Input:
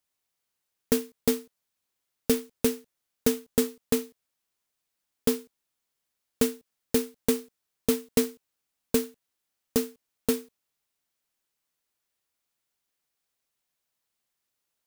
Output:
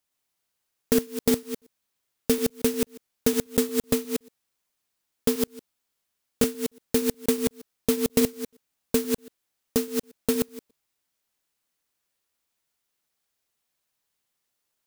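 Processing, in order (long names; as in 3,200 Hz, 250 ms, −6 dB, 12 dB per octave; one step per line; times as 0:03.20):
delay that plays each chunk backwards 119 ms, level −3 dB
level +1 dB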